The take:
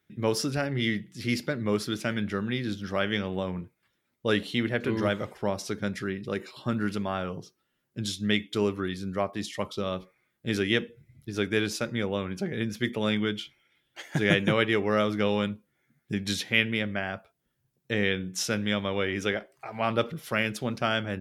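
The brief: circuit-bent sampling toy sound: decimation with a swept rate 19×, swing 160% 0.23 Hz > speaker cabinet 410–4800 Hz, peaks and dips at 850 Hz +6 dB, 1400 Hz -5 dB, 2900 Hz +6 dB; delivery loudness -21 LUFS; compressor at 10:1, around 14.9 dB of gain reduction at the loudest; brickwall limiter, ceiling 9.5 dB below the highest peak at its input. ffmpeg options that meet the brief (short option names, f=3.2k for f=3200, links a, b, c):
-af "acompressor=threshold=-33dB:ratio=10,alimiter=level_in=5dB:limit=-24dB:level=0:latency=1,volume=-5dB,acrusher=samples=19:mix=1:aa=0.000001:lfo=1:lforange=30.4:lforate=0.23,highpass=410,equalizer=f=850:t=q:w=4:g=6,equalizer=f=1.4k:t=q:w=4:g=-5,equalizer=f=2.9k:t=q:w=4:g=6,lowpass=f=4.8k:w=0.5412,lowpass=f=4.8k:w=1.3066,volume=23.5dB"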